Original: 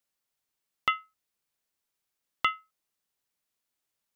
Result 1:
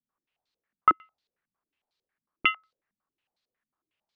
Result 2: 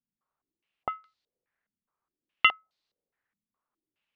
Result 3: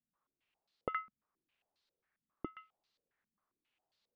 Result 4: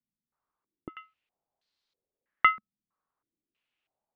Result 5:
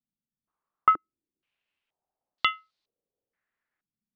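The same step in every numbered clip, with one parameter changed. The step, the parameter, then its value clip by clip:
step-sequenced low-pass, rate: 11 Hz, 4.8 Hz, 7.4 Hz, 3.1 Hz, 2.1 Hz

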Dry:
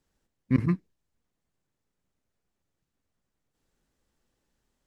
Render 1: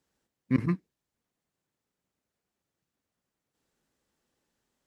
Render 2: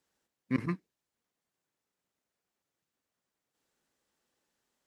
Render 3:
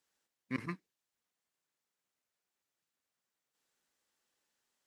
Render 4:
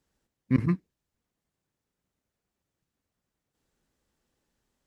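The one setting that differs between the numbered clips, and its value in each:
high-pass, cutoff frequency: 160 Hz, 460 Hz, 1.3 kHz, 41 Hz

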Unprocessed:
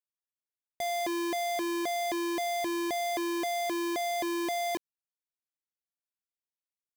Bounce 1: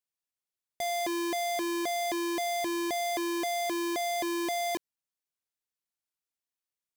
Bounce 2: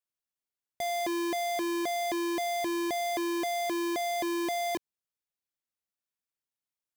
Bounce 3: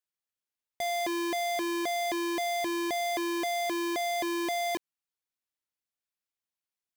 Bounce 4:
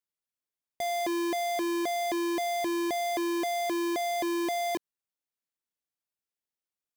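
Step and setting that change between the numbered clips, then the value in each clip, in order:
peaking EQ, frequency: 8 kHz, 130 Hz, 2.5 kHz, 340 Hz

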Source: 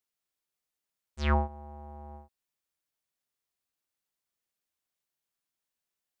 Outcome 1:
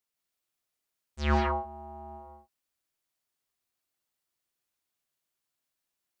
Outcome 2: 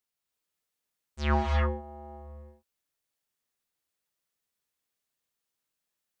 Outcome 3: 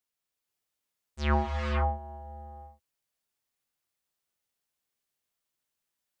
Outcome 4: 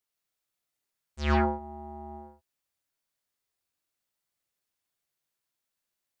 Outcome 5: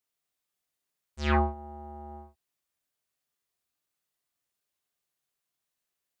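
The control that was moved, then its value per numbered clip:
gated-style reverb, gate: 210 ms, 360 ms, 530 ms, 140 ms, 80 ms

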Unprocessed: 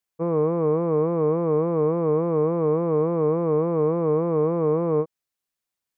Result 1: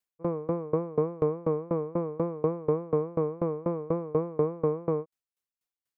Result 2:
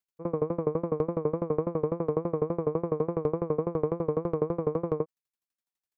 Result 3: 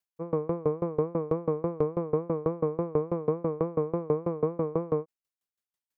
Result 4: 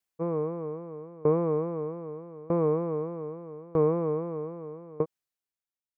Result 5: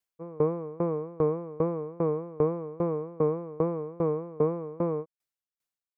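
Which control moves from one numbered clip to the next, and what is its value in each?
sawtooth tremolo in dB, rate: 4.1 Hz, 12 Hz, 6.1 Hz, 0.8 Hz, 2.5 Hz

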